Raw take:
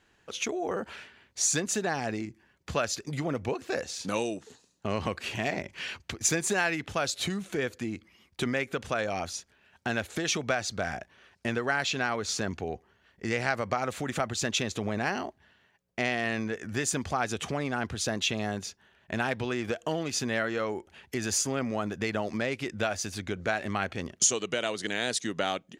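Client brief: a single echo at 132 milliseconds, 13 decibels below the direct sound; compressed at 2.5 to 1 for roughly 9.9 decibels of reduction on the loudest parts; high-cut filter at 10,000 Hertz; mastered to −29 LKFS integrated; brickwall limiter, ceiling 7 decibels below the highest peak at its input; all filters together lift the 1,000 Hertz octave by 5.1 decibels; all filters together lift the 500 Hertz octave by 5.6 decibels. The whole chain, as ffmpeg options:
ffmpeg -i in.wav -af "lowpass=10000,equalizer=frequency=500:width_type=o:gain=5.5,equalizer=frequency=1000:width_type=o:gain=5,acompressor=threshold=-34dB:ratio=2.5,alimiter=limit=-23.5dB:level=0:latency=1,aecho=1:1:132:0.224,volume=7.5dB" out.wav

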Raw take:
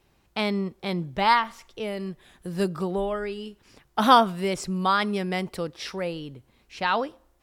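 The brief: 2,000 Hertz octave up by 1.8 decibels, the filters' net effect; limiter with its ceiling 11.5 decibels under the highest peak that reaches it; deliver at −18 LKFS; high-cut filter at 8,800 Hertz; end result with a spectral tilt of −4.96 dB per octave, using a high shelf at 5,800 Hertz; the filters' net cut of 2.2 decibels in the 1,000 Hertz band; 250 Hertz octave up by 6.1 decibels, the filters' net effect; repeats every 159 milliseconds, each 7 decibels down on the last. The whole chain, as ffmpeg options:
ffmpeg -i in.wav -af "lowpass=8800,equalizer=frequency=250:width_type=o:gain=8.5,equalizer=frequency=1000:width_type=o:gain=-4,equalizer=frequency=2000:width_type=o:gain=3,highshelf=frequency=5800:gain=4,alimiter=limit=-16.5dB:level=0:latency=1,aecho=1:1:159|318|477|636|795:0.447|0.201|0.0905|0.0407|0.0183,volume=8.5dB" out.wav

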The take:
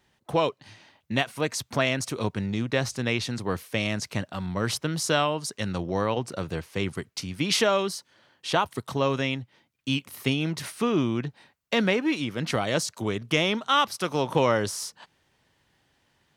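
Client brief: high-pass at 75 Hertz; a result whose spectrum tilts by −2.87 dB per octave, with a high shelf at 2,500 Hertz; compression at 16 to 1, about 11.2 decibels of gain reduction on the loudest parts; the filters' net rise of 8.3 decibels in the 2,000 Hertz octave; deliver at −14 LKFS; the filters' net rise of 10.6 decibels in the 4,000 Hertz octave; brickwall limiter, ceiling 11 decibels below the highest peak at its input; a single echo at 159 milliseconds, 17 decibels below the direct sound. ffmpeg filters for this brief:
ffmpeg -i in.wav -af "highpass=75,equalizer=frequency=2000:width_type=o:gain=5,highshelf=frequency=2500:gain=7,equalizer=frequency=4000:width_type=o:gain=6,acompressor=threshold=-21dB:ratio=16,alimiter=limit=-17dB:level=0:latency=1,aecho=1:1:159:0.141,volume=15.5dB" out.wav

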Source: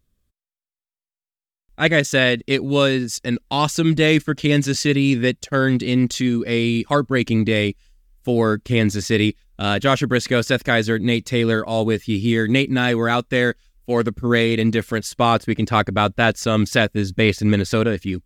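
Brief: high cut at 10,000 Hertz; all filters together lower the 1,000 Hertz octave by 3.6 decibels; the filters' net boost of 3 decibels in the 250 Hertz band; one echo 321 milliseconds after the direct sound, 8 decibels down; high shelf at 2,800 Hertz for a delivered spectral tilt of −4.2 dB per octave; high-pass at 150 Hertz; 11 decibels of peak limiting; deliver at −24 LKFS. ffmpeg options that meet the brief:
ffmpeg -i in.wav -af "highpass=150,lowpass=10000,equalizer=frequency=250:width_type=o:gain=4.5,equalizer=frequency=1000:width_type=o:gain=-6.5,highshelf=frequency=2800:gain=6,alimiter=limit=-12dB:level=0:latency=1,aecho=1:1:321:0.398,volume=-2dB" out.wav

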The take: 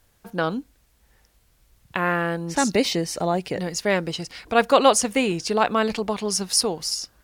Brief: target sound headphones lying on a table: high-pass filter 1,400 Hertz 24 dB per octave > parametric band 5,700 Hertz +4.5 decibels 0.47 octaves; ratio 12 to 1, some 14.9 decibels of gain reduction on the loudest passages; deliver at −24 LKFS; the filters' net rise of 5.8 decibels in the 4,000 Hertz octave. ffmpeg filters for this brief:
ffmpeg -i in.wav -af "equalizer=frequency=4000:width_type=o:gain=5,acompressor=threshold=-25dB:ratio=12,highpass=frequency=1400:width=0.5412,highpass=frequency=1400:width=1.3066,equalizer=frequency=5700:width_type=o:width=0.47:gain=4.5,volume=6.5dB" out.wav

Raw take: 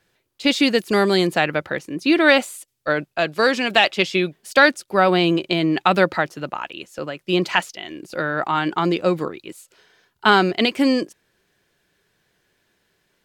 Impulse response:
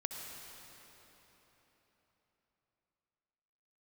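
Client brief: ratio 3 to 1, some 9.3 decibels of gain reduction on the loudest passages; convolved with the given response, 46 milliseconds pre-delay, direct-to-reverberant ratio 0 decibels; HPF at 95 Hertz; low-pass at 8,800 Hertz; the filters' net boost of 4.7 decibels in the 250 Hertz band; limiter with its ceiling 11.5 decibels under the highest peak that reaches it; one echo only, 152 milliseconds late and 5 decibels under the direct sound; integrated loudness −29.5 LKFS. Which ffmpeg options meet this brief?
-filter_complex "[0:a]highpass=95,lowpass=8800,equalizer=frequency=250:width_type=o:gain=6.5,acompressor=threshold=-21dB:ratio=3,alimiter=limit=-17dB:level=0:latency=1,aecho=1:1:152:0.562,asplit=2[link_01][link_02];[1:a]atrim=start_sample=2205,adelay=46[link_03];[link_02][link_03]afir=irnorm=-1:irlink=0,volume=-0.5dB[link_04];[link_01][link_04]amix=inputs=2:normalize=0,volume=-5.5dB"

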